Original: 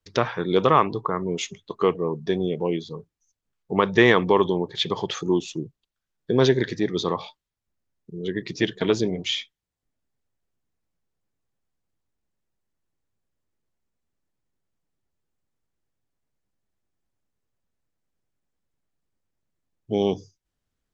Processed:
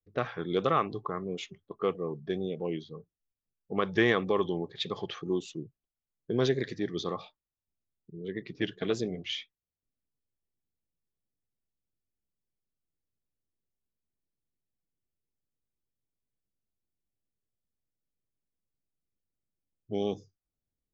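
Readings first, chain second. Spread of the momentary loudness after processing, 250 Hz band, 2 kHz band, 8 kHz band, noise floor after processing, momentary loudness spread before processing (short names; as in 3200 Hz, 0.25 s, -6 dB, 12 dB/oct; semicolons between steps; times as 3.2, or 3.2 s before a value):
14 LU, -8.5 dB, -8.5 dB, n/a, under -85 dBFS, 14 LU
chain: vibrato 1.7 Hz 68 cents; Butterworth band-stop 940 Hz, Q 6.9; low-pass opened by the level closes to 560 Hz, open at -19.5 dBFS; gain -8.5 dB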